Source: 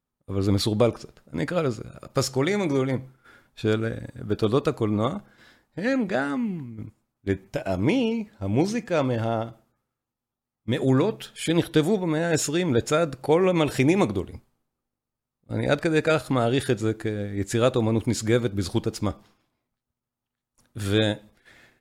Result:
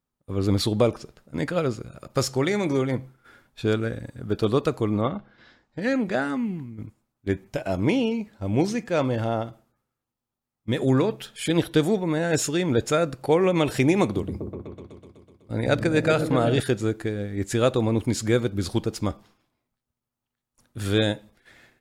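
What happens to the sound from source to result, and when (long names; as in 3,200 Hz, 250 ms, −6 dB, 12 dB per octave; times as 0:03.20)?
0:05.00–0:05.80: low-pass filter 3,100 Hz → 8,000 Hz 24 dB per octave
0:14.03–0:16.60: echo whose low-pass opens from repeat to repeat 125 ms, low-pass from 200 Hz, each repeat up 1 octave, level −3 dB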